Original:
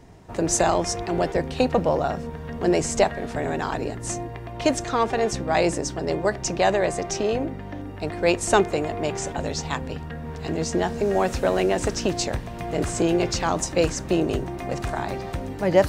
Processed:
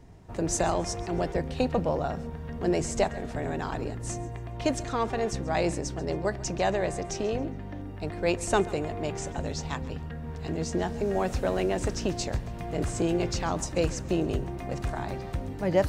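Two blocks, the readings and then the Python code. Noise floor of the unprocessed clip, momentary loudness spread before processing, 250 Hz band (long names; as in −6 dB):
−36 dBFS, 10 LU, −4.5 dB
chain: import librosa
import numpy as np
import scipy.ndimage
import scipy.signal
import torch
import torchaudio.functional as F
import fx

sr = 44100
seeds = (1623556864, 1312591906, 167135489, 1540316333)

y = fx.low_shelf(x, sr, hz=170.0, db=7.5)
y = fx.echo_feedback(y, sr, ms=137, feedback_pct=34, wet_db=-19.5)
y = F.gain(torch.from_numpy(y), -7.0).numpy()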